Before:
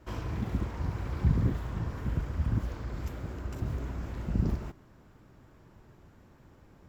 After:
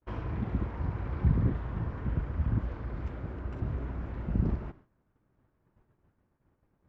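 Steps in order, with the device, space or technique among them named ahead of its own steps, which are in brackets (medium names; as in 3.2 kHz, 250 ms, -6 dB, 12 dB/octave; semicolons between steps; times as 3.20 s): hearing-loss simulation (low-pass 2.3 kHz 12 dB/octave; expander -45 dBFS)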